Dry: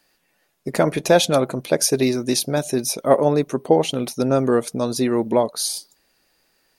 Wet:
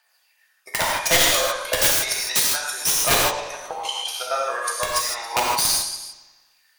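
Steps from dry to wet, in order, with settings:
delay that plays each chunk backwards 142 ms, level −6.5 dB
high-pass filter 810 Hz 24 dB per octave
0:03.27–0:04.26: downward compressor, threshold −28 dBFS, peak gain reduction 7.5 dB
transient designer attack +8 dB, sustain −2 dB
phase shifter 0.32 Hz, delay 2 ms, feedback 55%
wrap-around overflow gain 8.5 dB
bucket-brigade delay 88 ms, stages 4,096, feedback 60%, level −13 dB
reverb whose tail is shaped and stops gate 180 ms flat, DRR −3 dB
level −4.5 dB

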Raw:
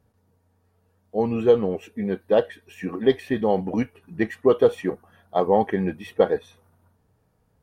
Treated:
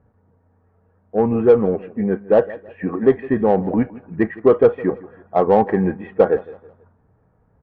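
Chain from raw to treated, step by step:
low-pass filter 1,800 Hz 24 dB per octave
in parallel at −4.5 dB: soft clipping −18.5 dBFS, distortion −8 dB
on the sum: repeating echo 162 ms, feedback 36%, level −19.5 dB
level +2.5 dB

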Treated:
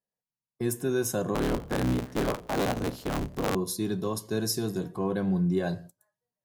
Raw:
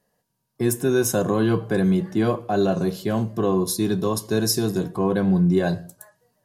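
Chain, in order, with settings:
0:01.34–0:03.56: sub-harmonics by changed cycles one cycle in 3, inverted
noise gate −36 dBFS, range −17 dB
level −7.5 dB

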